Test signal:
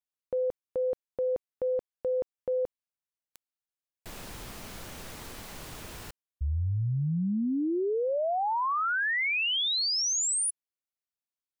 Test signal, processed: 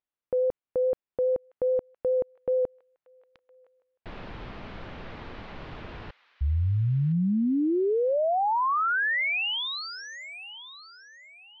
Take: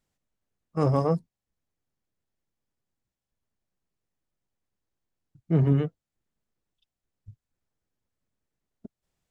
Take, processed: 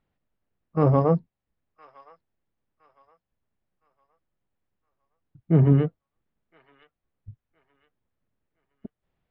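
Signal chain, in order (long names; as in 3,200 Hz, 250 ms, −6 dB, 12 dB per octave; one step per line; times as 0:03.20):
pitch vibrato 4.8 Hz 15 cents
Bessel low-pass filter 2,400 Hz, order 6
delay with a high-pass on its return 1,014 ms, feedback 32%, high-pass 1,600 Hz, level −13.5 dB
level +4 dB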